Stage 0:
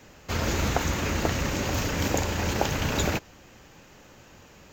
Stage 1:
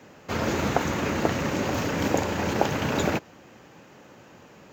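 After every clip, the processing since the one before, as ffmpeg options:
-af "highpass=140,highshelf=f=2500:g=-9.5,volume=1.58"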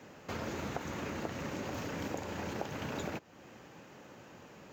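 -af "acompressor=threshold=0.0141:ratio=2.5,volume=0.668"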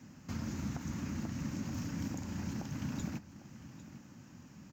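-af "firequalizer=gain_entry='entry(250,0);entry(420,-20);entry(970,-13);entry(1700,-12);entry(3600,-13);entry(5400,-3);entry(9300,-7)':delay=0.05:min_phase=1,aecho=1:1:802:0.168,volume=1.68"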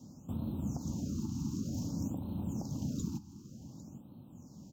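-af "asuperstop=centerf=1900:order=4:qfactor=0.59,afftfilt=real='re*(1-between(b*sr/1024,520*pow(6100/520,0.5+0.5*sin(2*PI*0.54*pts/sr))/1.41,520*pow(6100/520,0.5+0.5*sin(2*PI*0.54*pts/sr))*1.41))':imag='im*(1-between(b*sr/1024,520*pow(6100/520,0.5+0.5*sin(2*PI*0.54*pts/sr))/1.41,520*pow(6100/520,0.5+0.5*sin(2*PI*0.54*pts/sr))*1.41))':win_size=1024:overlap=0.75,volume=1.26"

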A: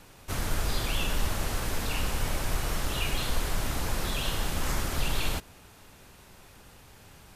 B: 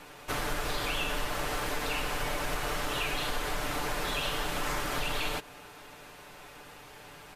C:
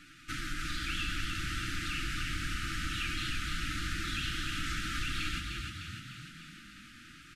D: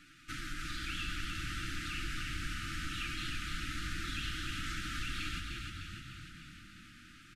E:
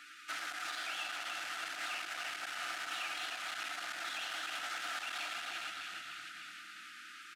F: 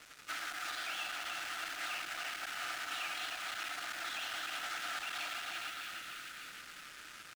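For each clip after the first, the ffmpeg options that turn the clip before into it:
-af "bass=f=250:g=-11,treble=f=4000:g=-7,aecho=1:1:6.8:0.55,acompressor=threshold=0.0158:ratio=2.5,volume=2"
-filter_complex "[0:a]lowpass=8400,asplit=9[s0][s1][s2][s3][s4][s5][s6][s7][s8];[s1]adelay=302,afreqshift=37,volume=0.562[s9];[s2]adelay=604,afreqshift=74,volume=0.339[s10];[s3]adelay=906,afreqshift=111,volume=0.202[s11];[s4]adelay=1208,afreqshift=148,volume=0.122[s12];[s5]adelay=1510,afreqshift=185,volume=0.0733[s13];[s6]adelay=1812,afreqshift=222,volume=0.0437[s14];[s7]adelay=2114,afreqshift=259,volume=0.0263[s15];[s8]adelay=2416,afreqshift=296,volume=0.0157[s16];[s0][s9][s10][s11][s12][s13][s14][s15][s16]amix=inputs=9:normalize=0,afftfilt=real='re*(1-between(b*sr/4096,350,1200))':imag='im*(1-between(b*sr/4096,350,1200))':win_size=4096:overlap=0.75,volume=0.668"
-filter_complex "[0:a]asplit=2[s0][s1];[s1]adelay=407,lowpass=f=2000:p=1,volume=0.316,asplit=2[s2][s3];[s3]adelay=407,lowpass=f=2000:p=1,volume=0.55,asplit=2[s4][s5];[s5]adelay=407,lowpass=f=2000:p=1,volume=0.55,asplit=2[s6][s7];[s7]adelay=407,lowpass=f=2000:p=1,volume=0.55,asplit=2[s8][s9];[s9]adelay=407,lowpass=f=2000:p=1,volume=0.55,asplit=2[s10][s11];[s11]adelay=407,lowpass=f=2000:p=1,volume=0.55[s12];[s0][s2][s4][s6][s8][s10][s12]amix=inputs=7:normalize=0,volume=0.631"
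-af "alimiter=level_in=2.37:limit=0.0631:level=0:latency=1:release=70,volume=0.422,asoftclip=type=tanh:threshold=0.0106,highpass=f=720:t=q:w=7.1,volume=1.88"
-af "acrusher=bits=7:mix=0:aa=0.5"

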